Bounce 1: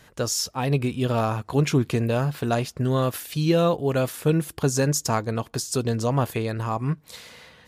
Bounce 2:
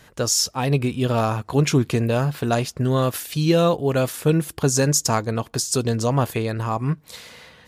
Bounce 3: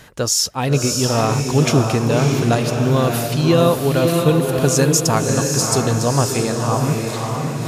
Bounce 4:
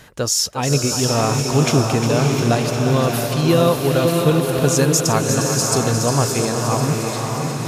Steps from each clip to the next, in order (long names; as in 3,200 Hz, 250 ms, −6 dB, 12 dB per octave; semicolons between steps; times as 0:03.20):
dynamic equaliser 6,800 Hz, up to +4 dB, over −39 dBFS, Q 0.75; level +2.5 dB
feedback delay with all-pass diffusion 607 ms, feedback 44%, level −3 dB; reversed playback; upward compression, threshold −21 dBFS; reversed playback; level +2.5 dB
feedback echo with a high-pass in the loop 355 ms, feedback 72%, level −8 dB; level −1 dB